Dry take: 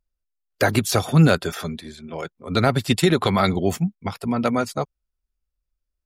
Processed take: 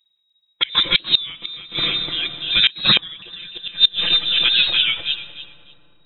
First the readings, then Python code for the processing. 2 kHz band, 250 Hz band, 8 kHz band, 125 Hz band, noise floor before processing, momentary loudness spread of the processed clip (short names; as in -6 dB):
+5.0 dB, -15.5 dB, under -40 dB, -17.0 dB, -82 dBFS, 16 LU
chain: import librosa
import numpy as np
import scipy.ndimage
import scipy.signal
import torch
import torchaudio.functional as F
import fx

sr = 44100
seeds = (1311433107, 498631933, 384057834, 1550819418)

p1 = x + 0.84 * np.pad(x, (int(5.8 * sr / 1000.0), 0))[:len(x)]
p2 = fx.transient(p1, sr, attack_db=-3, sustain_db=5)
p3 = fx.freq_invert(p2, sr, carrier_hz=3800)
p4 = p3 + fx.echo_feedback(p3, sr, ms=297, feedback_pct=21, wet_db=-3.5, dry=0)
p5 = fx.rev_freeverb(p4, sr, rt60_s=3.8, hf_ratio=0.25, predelay_ms=40, drr_db=11.5)
p6 = fx.gate_flip(p5, sr, shuts_db=-6.0, range_db=-26)
p7 = fx.record_warp(p6, sr, rpm=33.33, depth_cents=100.0)
y = p7 * librosa.db_to_amplitude(4.0)